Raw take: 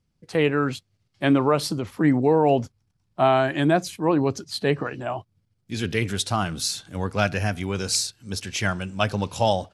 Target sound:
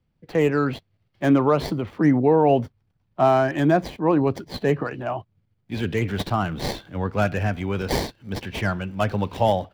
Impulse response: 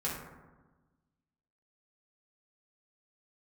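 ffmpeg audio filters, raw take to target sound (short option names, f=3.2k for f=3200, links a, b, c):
-filter_complex "[0:a]acrossover=split=210|1300|4000[a][b][c][d];[c]asoftclip=type=tanh:threshold=-30.5dB[e];[d]acrusher=samples=33:mix=1:aa=0.000001[f];[a][b][e][f]amix=inputs=4:normalize=0,volume=1.5dB"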